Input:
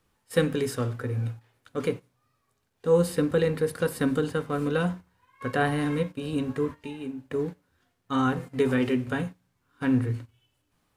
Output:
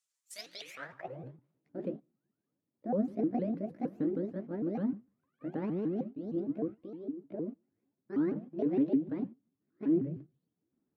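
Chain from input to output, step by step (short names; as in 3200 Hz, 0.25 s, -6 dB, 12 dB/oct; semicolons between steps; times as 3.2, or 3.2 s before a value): repeated pitch sweeps +8 st, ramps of 0.154 s; band-pass sweep 7300 Hz -> 260 Hz, 0.37–1.45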